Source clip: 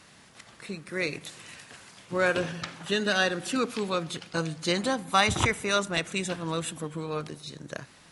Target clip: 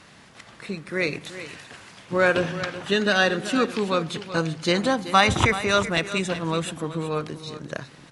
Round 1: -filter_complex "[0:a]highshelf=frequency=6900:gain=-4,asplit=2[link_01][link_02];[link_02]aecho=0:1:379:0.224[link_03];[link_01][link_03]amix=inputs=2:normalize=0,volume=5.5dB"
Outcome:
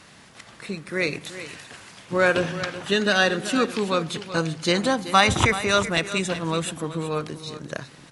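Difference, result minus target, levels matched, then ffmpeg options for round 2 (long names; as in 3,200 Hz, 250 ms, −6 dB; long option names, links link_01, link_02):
8,000 Hz band +3.0 dB
-filter_complex "[0:a]highshelf=frequency=6900:gain=-10.5,asplit=2[link_01][link_02];[link_02]aecho=0:1:379:0.224[link_03];[link_01][link_03]amix=inputs=2:normalize=0,volume=5.5dB"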